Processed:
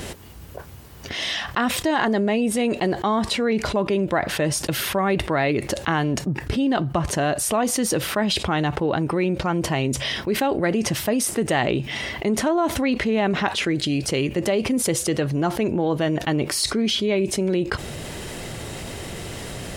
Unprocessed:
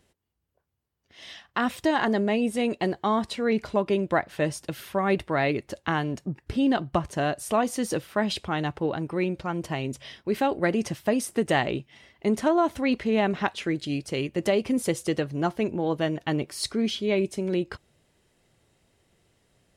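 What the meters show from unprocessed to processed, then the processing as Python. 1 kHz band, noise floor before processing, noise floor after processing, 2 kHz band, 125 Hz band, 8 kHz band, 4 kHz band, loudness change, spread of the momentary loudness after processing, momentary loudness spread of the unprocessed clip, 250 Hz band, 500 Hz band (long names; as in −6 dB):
+3.5 dB, −73 dBFS, −37 dBFS, +5.0 dB, +6.5 dB, +12.0 dB, +9.0 dB, +4.0 dB, 12 LU, 7 LU, +4.0 dB, +3.5 dB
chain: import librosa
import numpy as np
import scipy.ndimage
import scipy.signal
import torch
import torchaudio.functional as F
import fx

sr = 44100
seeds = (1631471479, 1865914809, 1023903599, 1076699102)

y = fx.env_flatten(x, sr, amount_pct=70)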